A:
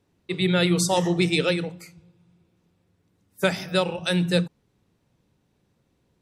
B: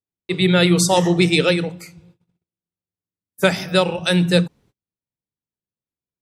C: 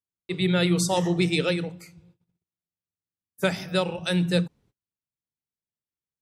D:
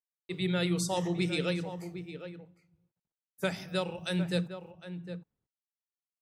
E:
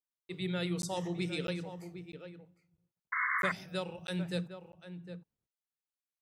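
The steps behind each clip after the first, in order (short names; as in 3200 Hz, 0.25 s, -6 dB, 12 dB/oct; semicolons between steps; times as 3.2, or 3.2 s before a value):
gate -56 dBFS, range -35 dB; gain +6 dB
low shelf 180 Hz +4 dB; gain -8.5 dB
bit-crush 12-bit; outdoor echo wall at 130 m, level -10 dB; gain -7.5 dB
painted sound noise, 3.12–3.52, 1000–2200 Hz -27 dBFS; crackling interface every 0.65 s, samples 512, zero, from 0.82; gain -5 dB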